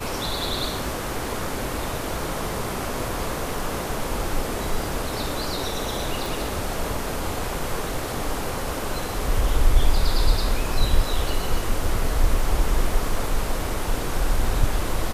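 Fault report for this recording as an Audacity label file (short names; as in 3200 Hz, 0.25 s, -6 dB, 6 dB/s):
6.260000	6.260000	pop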